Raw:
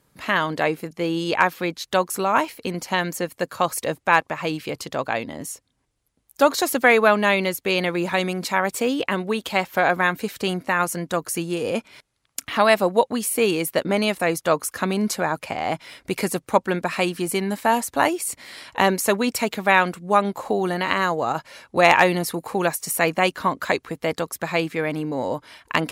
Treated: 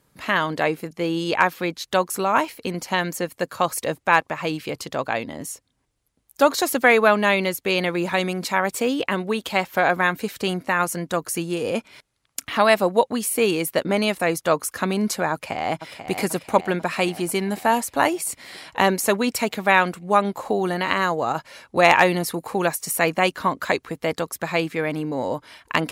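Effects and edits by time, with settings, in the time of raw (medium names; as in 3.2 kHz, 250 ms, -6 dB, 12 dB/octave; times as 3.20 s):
15.32–16.11 s: echo throw 490 ms, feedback 65%, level -9.5 dB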